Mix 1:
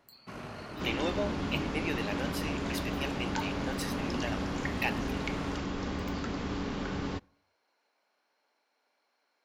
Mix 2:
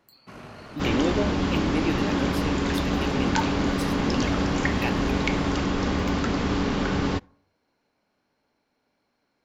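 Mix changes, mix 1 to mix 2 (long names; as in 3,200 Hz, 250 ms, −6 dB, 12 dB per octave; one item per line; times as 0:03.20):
speech: remove high-pass filter 590 Hz 12 dB per octave
second sound +10.0 dB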